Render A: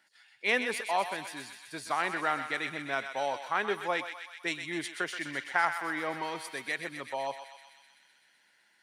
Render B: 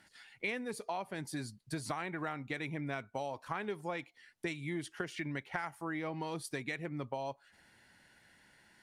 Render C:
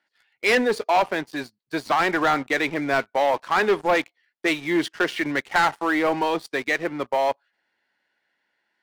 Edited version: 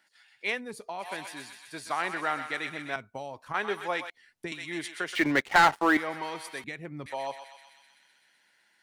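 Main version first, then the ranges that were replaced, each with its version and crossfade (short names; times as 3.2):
A
0.53–1.05 from B, crossfade 0.16 s
2.96–3.54 from B
4.1–4.52 from B
5.15–5.97 from C
6.64–7.06 from B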